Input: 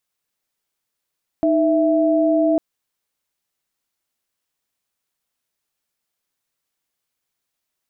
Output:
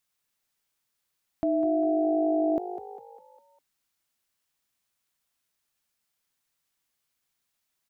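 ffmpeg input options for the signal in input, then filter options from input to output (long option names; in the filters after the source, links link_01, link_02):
-f lavfi -i "aevalsrc='0.15*(sin(2*PI*311.13*t)+sin(2*PI*659.26*t))':duration=1.15:sample_rate=44100"
-filter_complex "[0:a]alimiter=limit=-16dB:level=0:latency=1:release=16,equalizer=frequency=450:width_type=o:width=1.5:gain=-4.5,asplit=6[link_01][link_02][link_03][link_04][link_05][link_06];[link_02]adelay=201,afreqshift=51,volume=-11.5dB[link_07];[link_03]adelay=402,afreqshift=102,volume=-18.1dB[link_08];[link_04]adelay=603,afreqshift=153,volume=-24.6dB[link_09];[link_05]adelay=804,afreqshift=204,volume=-31.2dB[link_10];[link_06]adelay=1005,afreqshift=255,volume=-37.7dB[link_11];[link_01][link_07][link_08][link_09][link_10][link_11]amix=inputs=6:normalize=0"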